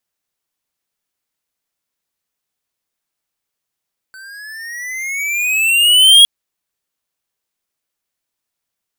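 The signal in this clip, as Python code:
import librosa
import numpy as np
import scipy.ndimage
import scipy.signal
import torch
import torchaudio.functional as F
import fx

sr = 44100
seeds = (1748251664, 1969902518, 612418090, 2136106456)

y = fx.riser_tone(sr, length_s=2.11, level_db=-4.5, wave='square', hz=1520.0, rise_st=13.5, swell_db=31.5)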